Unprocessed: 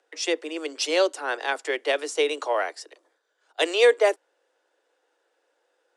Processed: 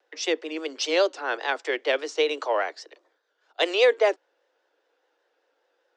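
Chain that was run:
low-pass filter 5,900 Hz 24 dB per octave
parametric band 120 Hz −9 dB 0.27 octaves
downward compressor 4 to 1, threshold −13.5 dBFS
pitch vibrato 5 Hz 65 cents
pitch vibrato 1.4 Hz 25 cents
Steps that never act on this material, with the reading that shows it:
parametric band 120 Hz: nothing at its input below 270 Hz

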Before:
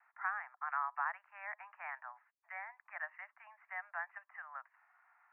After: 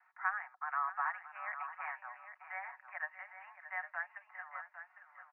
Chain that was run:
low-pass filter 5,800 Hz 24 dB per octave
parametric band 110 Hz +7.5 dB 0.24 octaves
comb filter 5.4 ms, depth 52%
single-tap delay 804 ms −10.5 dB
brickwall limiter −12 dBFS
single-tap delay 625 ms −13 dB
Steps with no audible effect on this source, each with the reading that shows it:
low-pass filter 5,800 Hz: nothing at its input above 2,900 Hz
parametric band 110 Hz: nothing at its input below 540 Hz
brickwall limiter −12 dBFS: peak of its input −21.5 dBFS

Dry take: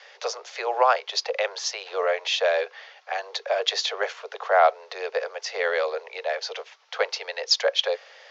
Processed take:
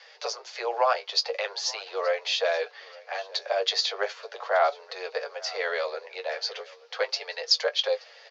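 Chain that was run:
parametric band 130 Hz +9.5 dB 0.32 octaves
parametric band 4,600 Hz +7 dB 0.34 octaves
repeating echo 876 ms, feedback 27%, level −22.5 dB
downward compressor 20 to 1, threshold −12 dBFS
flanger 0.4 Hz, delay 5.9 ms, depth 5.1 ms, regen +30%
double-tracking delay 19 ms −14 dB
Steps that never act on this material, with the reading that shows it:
parametric band 130 Hz: nothing at its input below 360 Hz

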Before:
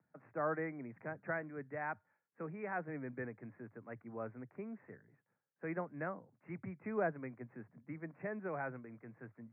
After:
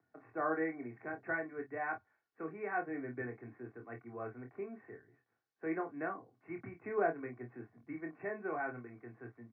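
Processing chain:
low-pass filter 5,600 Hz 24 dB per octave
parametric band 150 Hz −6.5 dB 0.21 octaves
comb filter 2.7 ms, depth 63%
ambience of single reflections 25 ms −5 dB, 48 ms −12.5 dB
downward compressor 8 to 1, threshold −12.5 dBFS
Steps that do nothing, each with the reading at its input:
low-pass filter 5,600 Hz: nothing at its input above 2,600 Hz
downward compressor, threshold −12.5 dBFS: peak of its input −20.0 dBFS

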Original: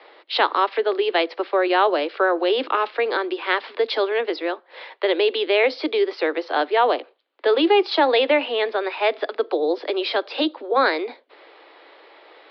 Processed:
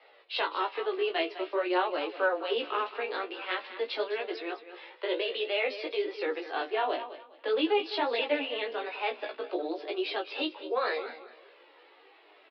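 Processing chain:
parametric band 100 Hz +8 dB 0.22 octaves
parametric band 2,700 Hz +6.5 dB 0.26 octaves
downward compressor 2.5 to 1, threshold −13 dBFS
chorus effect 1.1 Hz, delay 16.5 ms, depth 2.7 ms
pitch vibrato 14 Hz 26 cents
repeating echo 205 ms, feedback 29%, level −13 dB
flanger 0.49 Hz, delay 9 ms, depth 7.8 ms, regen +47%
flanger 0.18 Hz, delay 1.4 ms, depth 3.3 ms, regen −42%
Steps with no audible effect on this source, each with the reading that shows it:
parametric band 100 Hz: nothing at its input below 230 Hz

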